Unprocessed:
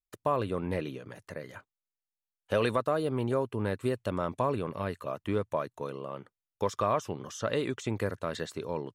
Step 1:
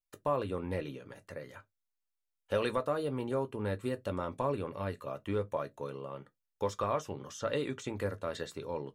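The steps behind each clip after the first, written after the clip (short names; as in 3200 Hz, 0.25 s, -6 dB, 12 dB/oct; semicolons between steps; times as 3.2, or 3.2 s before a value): reverb, pre-delay 4 ms, DRR 7.5 dB; gain -4.5 dB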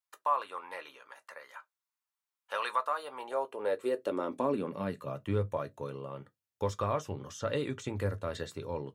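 high-pass sweep 1000 Hz -> 82 Hz, 2.99–5.61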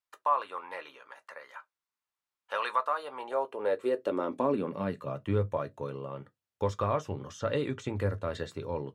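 LPF 3900 Hz 6 dB/oct; gain +2.5 dB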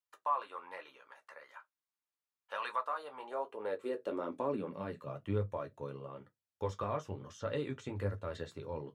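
flange 1.1 Hz, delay 8.5 ms, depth 6.2 ms, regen -42%; gain -3 dB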